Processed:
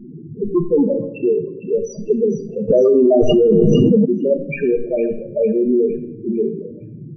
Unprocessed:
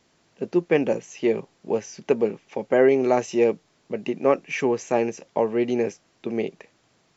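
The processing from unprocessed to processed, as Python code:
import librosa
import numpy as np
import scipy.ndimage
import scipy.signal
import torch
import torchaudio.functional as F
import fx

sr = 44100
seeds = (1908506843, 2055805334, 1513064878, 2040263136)

p1 = fx.wiener(x, sr, points=41)
p2 = fx.low_shelf(p1, sr, hz=290.0, db=-8.0, at=(1.26, 2.03))
p3 = fx.level_steps(p2, sr, step_db=9)
p4 = fx.fuzz(p3, sr, gain_db=40.0, gate_db=-40.0)
p5 = p3 + (p4 * 10.0 ** (-11.5 / 20.0))
p6 = fx.power_curve(p5, sr, exponent=0.35)
p7 = fx.spec_topn(p6, sr, count=4)
p8 = fx.echo_wet_highpass(p7, sr, ms=456, feedback_pct=42, hz=2800.0, wet_db=-8.5)
p9 = fx.room_shoebox(p8, sr, seeds[0], volume_m3=240.0, walls='mixed', distance_m=0.47)
p10 = fx.env_flatten(p9, sr, amount_pct=100, at=(2.68, 4.04), fade=0.02)
y = p10 * 10.0 ** (-2.0 / 20.0)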